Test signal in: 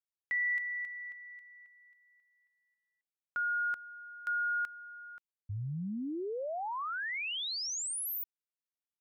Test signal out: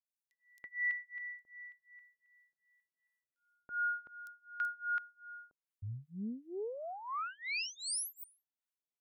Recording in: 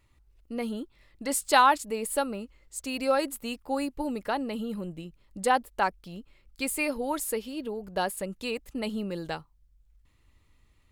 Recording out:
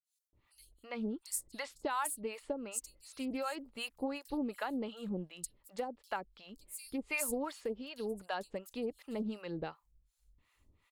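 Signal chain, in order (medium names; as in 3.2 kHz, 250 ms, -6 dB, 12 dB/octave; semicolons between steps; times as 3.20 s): bass shelf 130 Hz -6.5 dB; compression 12:1, threshold -29 dBFS; harmonic tremolo 2.7 Hz, depth 100%, crossover 650 Hz; bands offset in time highs, lows 330 ms, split 4.8 kHz; loudspeaker Doppler distortion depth 0.15 ms; trim +1 dB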